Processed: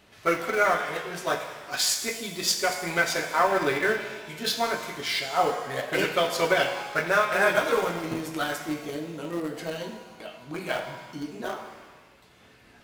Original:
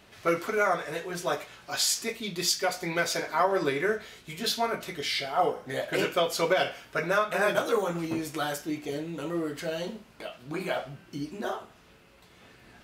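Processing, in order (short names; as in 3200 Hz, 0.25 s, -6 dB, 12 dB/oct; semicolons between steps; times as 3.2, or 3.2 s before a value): dynamic EQ 1700 Hz, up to +4 dB, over -38 dBFS, Q 1.4; in parallel at -7.5 dB: sample gate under -25 dBFS; on the sum: shimmer reverb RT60 1.3 s, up +7 st, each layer -8 dB, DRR 6 dB; gain -2 dB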